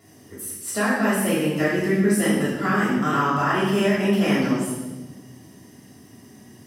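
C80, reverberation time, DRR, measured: 3.0 dB, 1.2 s, -10.0 dB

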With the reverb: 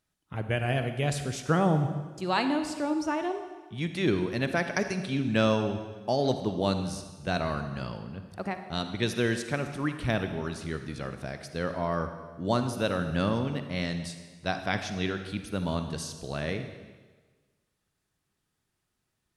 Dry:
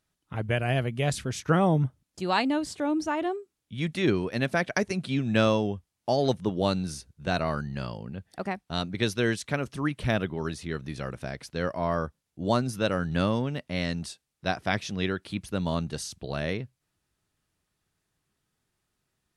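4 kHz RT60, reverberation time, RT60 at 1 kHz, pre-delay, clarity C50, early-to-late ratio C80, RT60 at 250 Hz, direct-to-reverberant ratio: 1.3 s, 1.4 s, 1.4 s, 37 ms, 8.5 dB, 10.0 dB, 1.3 s, 7.5 dB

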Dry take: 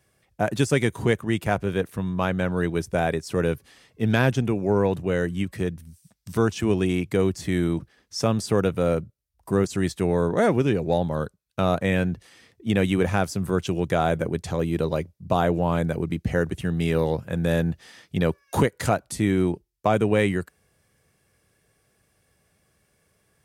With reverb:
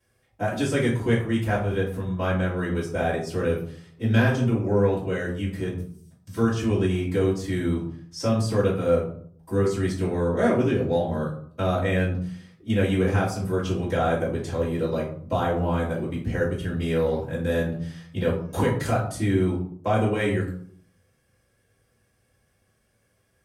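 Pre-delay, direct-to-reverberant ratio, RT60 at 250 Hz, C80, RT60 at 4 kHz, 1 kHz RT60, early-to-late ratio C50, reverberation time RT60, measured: 3 ms, -11.0 dB, 0.75 s, 10.5 dB, 0.35 s, 0.55 s, 6.0 dB, 0.60 s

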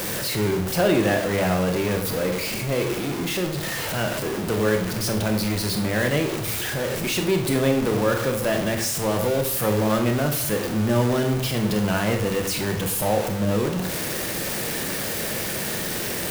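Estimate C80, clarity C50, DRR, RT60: 11.0 dB, 8.0 dB, 4.5 dB, 0.65 s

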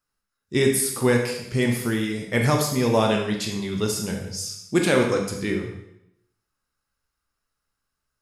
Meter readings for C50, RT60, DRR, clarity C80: 4.5 dB, 0.80 s, 1.0 dB, 7.5 dB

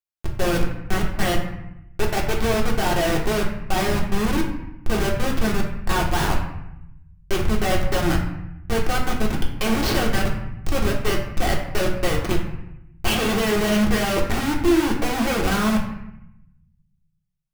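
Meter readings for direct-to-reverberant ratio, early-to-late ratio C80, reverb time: -2.0 dB, 8.0 dB, 0.85 s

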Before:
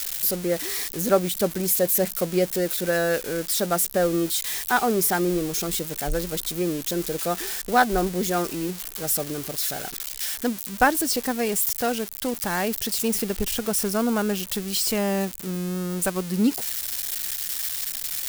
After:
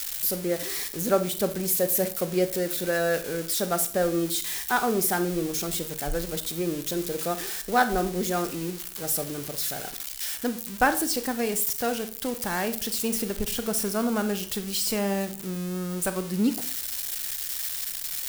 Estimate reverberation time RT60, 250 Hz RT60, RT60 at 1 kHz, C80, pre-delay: 0.45 s, 0.55 s, 0.40 s, 18.0 dB, 26 ms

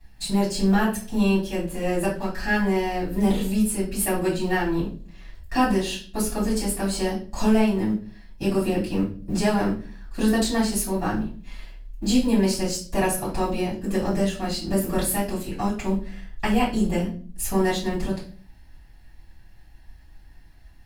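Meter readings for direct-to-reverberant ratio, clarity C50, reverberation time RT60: -9.0 dB, 7.5 dB, 0.45 s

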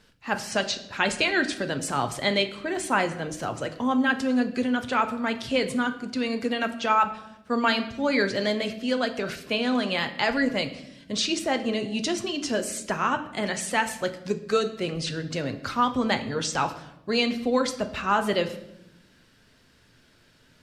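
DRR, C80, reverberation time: 7.0 dB, 15.0 dB, 0.85 s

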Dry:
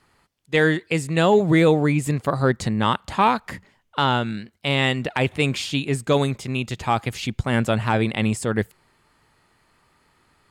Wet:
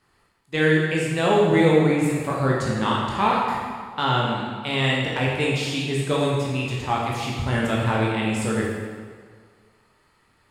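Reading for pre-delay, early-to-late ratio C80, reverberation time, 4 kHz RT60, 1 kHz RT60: 12 ms, 2.0 dB, 1.8 s, 1.4 s, 1.8 s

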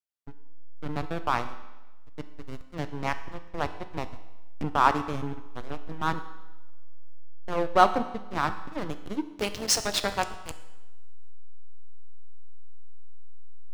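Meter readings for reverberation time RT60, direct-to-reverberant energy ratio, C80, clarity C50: 1.1 s, 9.5 dB, 14.0 dB, 12.0 dB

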